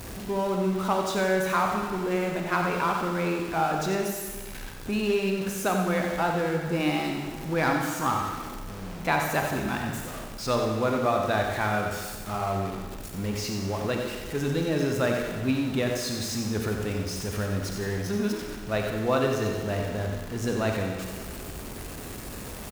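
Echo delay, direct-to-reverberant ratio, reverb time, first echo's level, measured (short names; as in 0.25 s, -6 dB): 91 ms, 1.5 dB, 1.4 s, -8.5 dB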